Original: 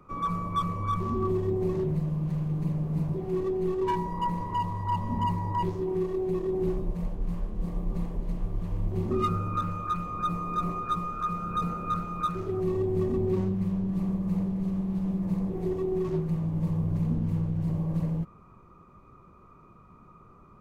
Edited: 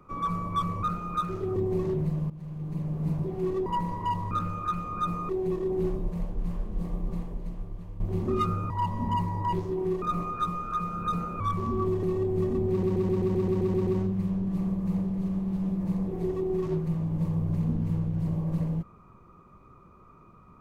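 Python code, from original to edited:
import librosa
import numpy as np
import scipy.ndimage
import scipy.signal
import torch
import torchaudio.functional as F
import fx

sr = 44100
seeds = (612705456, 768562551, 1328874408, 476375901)

y = fx.edit(x, sr, fx.swap(start_s=0.83, length_s=0.63, other_s=11.89, other_length_s=0.73),
    fx.fade_in_from(start_s=2.2, length_s=0.77, floor_db=-15.5),
    fx.cut(start_s=3.56, length_s=0.59),
    fx.swap(start_s=4.8, length_s=1.32, other_s=9.53, other_length_s=0.98),
    fx.fade_out_to(start_s=7.71, length_s=1.12, floor_db=-11.5),
    fx.stutter(start_s=13.29, slice_s=0.13, count=10), tone=tone)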